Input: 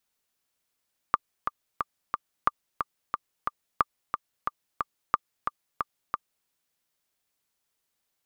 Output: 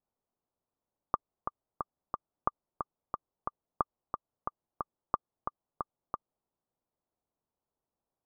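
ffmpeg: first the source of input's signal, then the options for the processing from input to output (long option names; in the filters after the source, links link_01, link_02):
-f lavfi -i "aevalsrc='pow(10,(-7-6.5*gte(mod(t,4*60/180),60/180))/20)*sin(2*PI*1190*mod(t,60/180))*exp(-6.91*mod(t,60/180)/0.03)':duration=5.33:sample_rate=44100"
-af "lowpass=frequency=1000:width=0.5412,lowpass=frequency=1000:width=1.3066"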